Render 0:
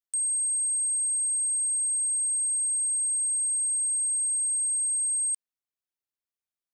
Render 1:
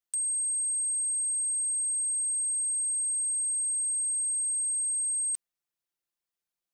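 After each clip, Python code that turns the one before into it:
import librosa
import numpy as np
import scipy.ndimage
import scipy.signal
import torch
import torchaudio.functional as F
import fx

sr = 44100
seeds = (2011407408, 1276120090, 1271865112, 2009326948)

y = x + 0.88 * np.pad(x, (int(5.8 * sr / 1000.0), 0))[:len(x)]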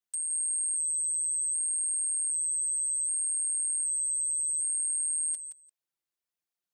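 y = fx.echo_feedback(x, sr, ms=171, feedback_pct=15, wet_db=-9.5)
y = fx.flanger_cancel(y, sr, hz=1.3, depth_ms=7.3)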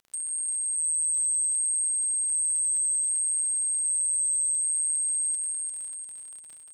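y = fx.dmg_crackle(x, sr, seeds[0], per_s=31.0, level_db=-39.0)
y = fx.echo_feedback(y, sr, ms=349, feedback_pct=51, wet_db=-4.5)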